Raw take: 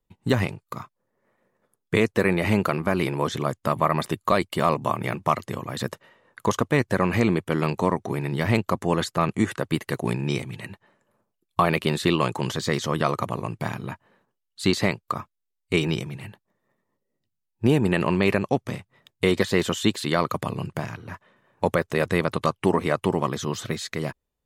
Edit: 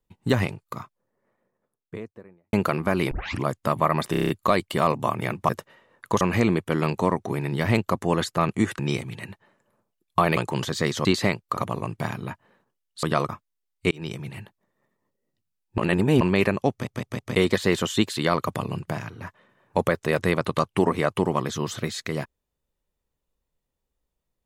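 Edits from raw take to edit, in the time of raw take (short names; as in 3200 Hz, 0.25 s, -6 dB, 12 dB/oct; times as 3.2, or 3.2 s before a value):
0.61–2.53 studio fade out
3.11 tape start 0.33 s
4.11 stutter 0.03 s, 7 plays
5.31–5.83 cut
6.55–7.01 cut
9.59–10.2 cut
11.78–12.24 cut
12.92–13.18 swap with 14.64–15.16
15.78–16.12 fade in
17.65–18.08 reverse
18.58 stutter in place 0.16 s, 4 plays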